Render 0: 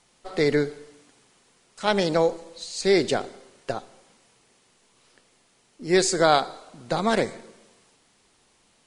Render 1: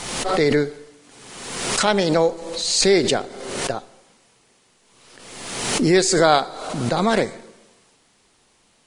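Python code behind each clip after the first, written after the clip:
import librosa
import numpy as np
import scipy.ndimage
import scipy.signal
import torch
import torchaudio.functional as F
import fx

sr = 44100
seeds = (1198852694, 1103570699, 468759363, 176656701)

y = fx.pre_swell(x, sr, db_per_s=42.0)
y = y * librosa.db_to_amplitude(3.0)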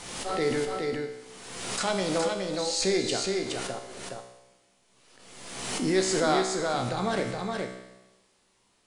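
y = fx.comb_fb(x, sr, f0_hz=63.0, decay_s=1.0, harmonics='all', damping=0.0, mix_pct=80)
y = y + 10.0 ** (-4.0 / 20.0) * np.pad(y, (int(418 * sr / 1000.0), 0))[:len(y)]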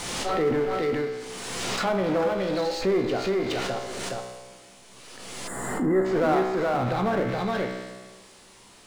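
y = fx.env_lowpass_down(x, sr, base_hz=1500.0, full_db=-23.5)
y = fx.power_curve(y, sr, exponent=0.7)
y = fx.spec_box(y, sr, start_s=5.47, length_s=0.58, low_hz=2100.0, high_hz=6800.0, gain_db=-19)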